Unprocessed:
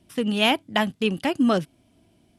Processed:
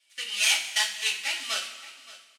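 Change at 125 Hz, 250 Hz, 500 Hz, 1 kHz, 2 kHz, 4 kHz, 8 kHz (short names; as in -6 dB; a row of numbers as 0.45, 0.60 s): under -40 dB, under -35 dB, -22.0 dB, -12.0 dB, +0.5 dB, +2.0 dB, +15.0 dB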